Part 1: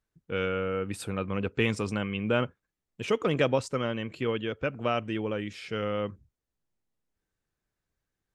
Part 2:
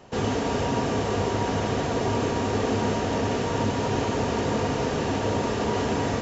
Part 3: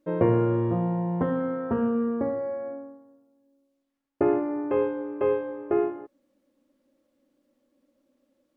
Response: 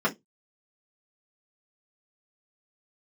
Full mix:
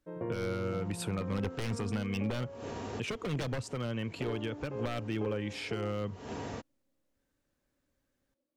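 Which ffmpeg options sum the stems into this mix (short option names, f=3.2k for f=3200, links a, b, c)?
-filter_complex "[0:a]aeval=exprs='0.075*(abs(mod(val(0)/0.075+3,4)-2)-1)':c=same,acrossover=split=170[a][b];[b]acompressor=threshold=-36dB:ratio=6[c];[a][c]amix=inputs=2:normalize=0,volume=3dB,asplit=2[d][e];[1:a]adelay=400,volume=-14dB[f];[2:a]volume=-15dB[g];[e]apad=whole_len=291861[h];[f][h]sidechaincompress=threshold=-55dB:ratio=5:attack=16:release=140[i];[d][i][g]amix=inputs=3:normalize=0,alimiter=limit=-24dB:level=0:latency=1:release=167"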